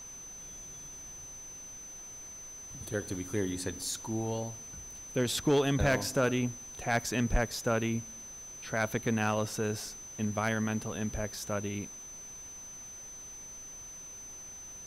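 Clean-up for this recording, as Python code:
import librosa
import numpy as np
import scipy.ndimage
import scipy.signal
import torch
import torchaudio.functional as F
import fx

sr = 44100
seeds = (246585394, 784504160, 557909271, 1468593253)

y = fx.fix_declip(x, sr, threshold_db=-19.5)
y = fx.notch(y, sr, hz=6100.0, q=30.0)
y = fx.noise_reduce(y, sr, print_start_s=12.82, print_end_s=13.32, reduce_db=30.0)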